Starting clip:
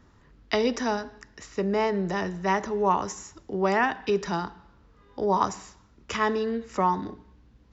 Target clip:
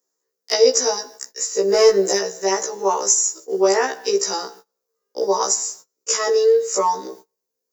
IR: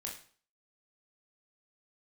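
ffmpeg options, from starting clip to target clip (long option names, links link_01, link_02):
-filter_complex "[0:a]aexciter=amount=10.9:drive=1.7:freq=4800,agate=range=-29dB:threshold=-44dB:ratio=16:detection=peak,aemphasis=mode=production:type=50fm,asplit=2[link_01][link_02];[link_02]acompressor=threshold=-33dB:ratio=6,volume=-0.5dB[link_03];[link_01][link_03]amix=inputs=2:normalize=0,highpass=frequency=450:width_type=q:width=4.9,asplit=3[link_04][link_05][link_06];[link_04]afade=type=out:start_time=1.68:duration=0.02[link_07];[link_05]acontrast=26,afade=type=in:start_time=1.68:duration=0.02,afade=type=out:start_time=2.17:duration=0.02[link_08];[link_06]afade=type=in:start_time=2.17:duration=0.02[link_09];[link_07][link_08][link_09]amix=inputs=3:normalize=0,afftfilt=real='re*1.73*eq(mod(b,3),0)':imag='im*1.73*eq(mod(b,3),0)':win_size=2048:overlap=0.75"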